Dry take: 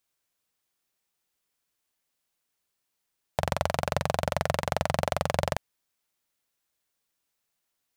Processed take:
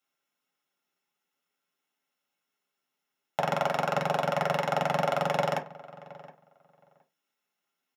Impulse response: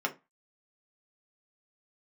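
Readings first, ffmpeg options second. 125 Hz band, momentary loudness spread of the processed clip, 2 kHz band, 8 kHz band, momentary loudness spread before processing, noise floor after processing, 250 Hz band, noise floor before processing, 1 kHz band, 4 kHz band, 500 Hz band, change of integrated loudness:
−4.0 dB, 19 LU, +1.0 dB, −7.0 dB, 5 LU, −85 dBFS, 0.0 dB, −81 dBFS, +2.5 dB, −1.5 dB, +1.0 dB, +1.0 dB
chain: -filter_complex "[0:a]asplit=2[link_01][link_02];[link_02]adelay=718,lowpass=frequency=2100:poles=1,volume=-18.5dB,asplit=2[link_03][link_04];[link_04]adelay=718,lowpass=frequency=2100:poles=1,volume=0.17[link_05];[link_01][link_03][link_05]amix=inputs=3:normalize=0[link_06];[1:a]atrim=start_sample=2205[link_07];[link_06][link_07]afir=irnorm=-1:irlink=0,volume=-5.5dB"

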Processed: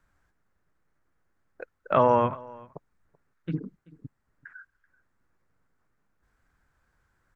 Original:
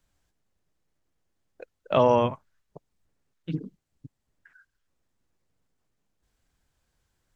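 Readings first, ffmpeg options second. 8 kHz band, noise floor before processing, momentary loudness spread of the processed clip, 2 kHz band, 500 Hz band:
can't be measured, −78 dBFS, 21 LU, +1.5 dB, −1.5 dB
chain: -filter_complex "[0:a]firequalizer=gain_entry='entry(670,0);entry(1400,9);entry(3000,-8)':delay=0.05:min_phase=1,asplit=2[link_01][link_02];[link_02]acompressor=threshold=-34dB:ratio=6,volume=-1.5dB[link_03];[link_01][link_03]amix=inputs=2:normalize=0,aecho=1:1:383:0.0708,volume=-2.5dB"

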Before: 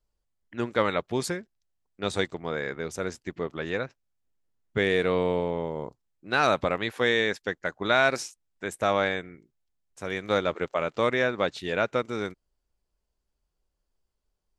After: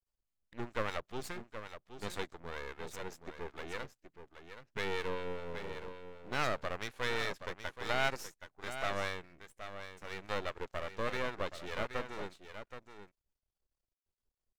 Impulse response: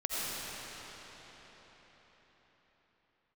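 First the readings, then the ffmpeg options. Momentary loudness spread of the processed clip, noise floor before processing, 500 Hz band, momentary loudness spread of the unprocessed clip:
15 LU, −80 dBFS, −13.5 dB, 12 LU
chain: -filter_complex "[0:a]acrossover=split=720[link_01][link_02];[link_01]aeval=exprs='val(0)*(1-0.5/2+0.5/2*cos(2*PI*4.9*n/s))':channel_layout=same[link_03];[link_02]aeval=exprs='val(0)*(1-0.5/2-0.5/2*cos(2*PI*4.9*n/s))':channel_layout=same[link_04];[link_03][link_04]amix=inputs=2:normalize=0,aecho=1:1:774:0.316,aeval=exprs='max(val(0),0)':channel_layout=same,volume=-5dB"

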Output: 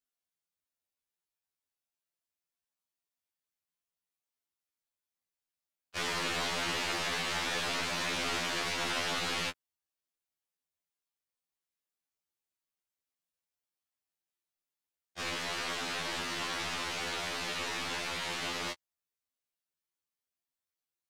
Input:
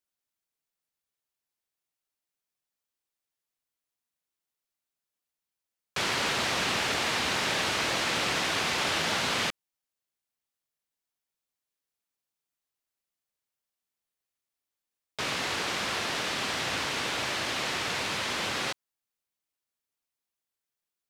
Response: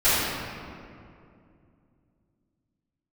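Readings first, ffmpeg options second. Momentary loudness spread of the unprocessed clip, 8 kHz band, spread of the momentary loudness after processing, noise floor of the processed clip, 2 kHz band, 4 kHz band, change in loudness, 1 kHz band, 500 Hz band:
5 LU, −5.0 dB, 5 LU, below −85 dBFS, −5.0 dB, −5.0 dB, −5.0 dB, −5.5 dB, −5.5 dB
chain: -af "aeval=exprs='val(0)*sin(2*PI*56*n/s)':channel_layout=same,aeval=exprs='0.15*(cos(1*acos(clip(val(0)/0.15,-1,1)))-cos(1*PI/2))+0.0106*(cos(4*acos(clip(val(0)/0.15,-1,1)))-cos(4*PI/2))':channel_layout=same,afftfilt=real='re*2*eq(mod(b,4),0)':imag='im*2*eq(mod(b,4),0)':win_size=2048:overlap=0.75"

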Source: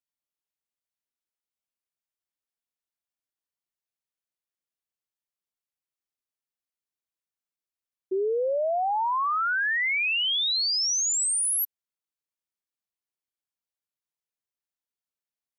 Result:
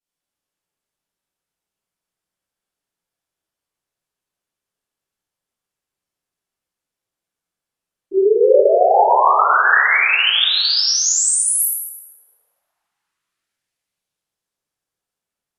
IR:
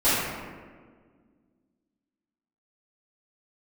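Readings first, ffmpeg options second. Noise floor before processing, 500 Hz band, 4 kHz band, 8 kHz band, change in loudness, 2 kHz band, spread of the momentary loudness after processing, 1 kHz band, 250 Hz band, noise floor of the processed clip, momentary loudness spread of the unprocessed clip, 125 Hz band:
below −85 dBFS, +14.0 dB, +9.0 dB, +8.5 dB, +10.5 dB, +10.5 dB, 6 LU, +12.5 dB, +15.0 dB, below −85 dBFS, 5 LU, can't be measured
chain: -filter_complex "[1:a]atrim=start_sample=2205,asetrate=26901,aresample=44100[link_01];[0:a][link_01]afir=irnorm=-1:irlink=0,volume=-9dB"

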